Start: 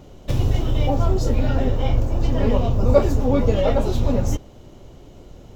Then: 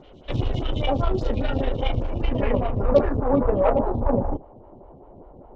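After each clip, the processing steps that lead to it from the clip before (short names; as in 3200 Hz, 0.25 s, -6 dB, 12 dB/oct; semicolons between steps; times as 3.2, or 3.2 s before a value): low-pass sweep 3300 Hz -> 900 Hz, 1.96–3.89; added harmonics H 8 -25 dB, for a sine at -0.5 dBFS; photocell phaser 5 Hz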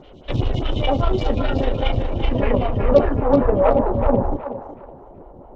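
thinning echo 0.372 s, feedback 30%, high-pass 550 Hz, level -6.5 dB; gain +3.5 dB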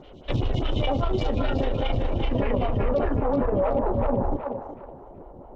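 limiter -13 dBFS, peak gain reduction 11 dB; gain -2 dB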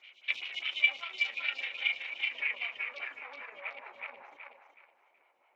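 resonant high-pass 2300 Hz, resonance Q 9.5; gain -5 dB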